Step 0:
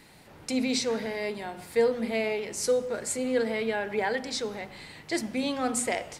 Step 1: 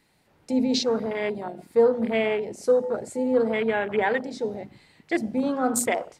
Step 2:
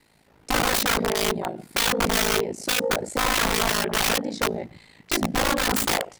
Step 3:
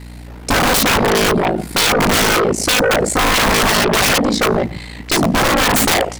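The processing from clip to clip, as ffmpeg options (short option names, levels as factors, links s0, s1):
-af "afwtdn=0.0224,volume=1.78"
-af "aeval=exprs='(mod(12.6*val(0)+1,2)-1)/12.6':c=same,aeval=exprs='val(0)*sin(2*PI*27*n/s)':c=same,volume=2.37"
-af "aeval=exprs='val(0)+0.00316*(sin(2*PI*60*n/s)+sin(2*PI*2*60*n/s)/2+sin(2*PI*3*60*n/s)/3+sin(2*PI*4*60*n/s)/4+sin(2*PI*5*60*n/s)/5)':c=same,aeval=exprs='0.2*sin(PI/2*3.16*val(0)/0.2)':c=same,volume=1.58"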